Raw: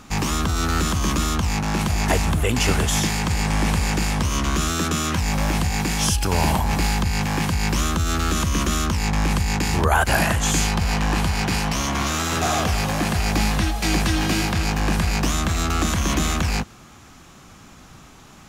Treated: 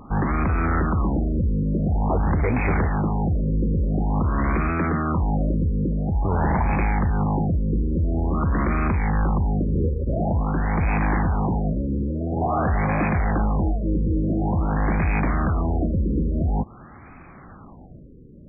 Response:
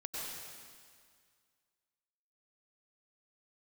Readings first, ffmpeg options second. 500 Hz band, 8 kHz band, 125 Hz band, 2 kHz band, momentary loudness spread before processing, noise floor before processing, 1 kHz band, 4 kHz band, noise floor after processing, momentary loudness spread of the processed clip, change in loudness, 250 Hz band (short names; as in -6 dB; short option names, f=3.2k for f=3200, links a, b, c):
0.0 dB, under -40 dB, +0.5 dB, -6.5 dB, 3 LU, -46 dBFS, -2.5 dB, under -40 dB, -44 dBFS, 2 LU, -1.5 dB, +0.5 dB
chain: -af "asoftclip=type=hard:threshold=-20dB,afftfilt=real='re*lt(b*sr/1024,540*pow(2600/540,0.5+0.5*sin(2*PI*0.48*pts/sr)))':imag='im*lt(b*sr/1024,540*pow(2600/540,0.5+0.5*sin(2*PI*0.48*pts/sr)))':win_size=1024:overlap=0.75,volume=3dB"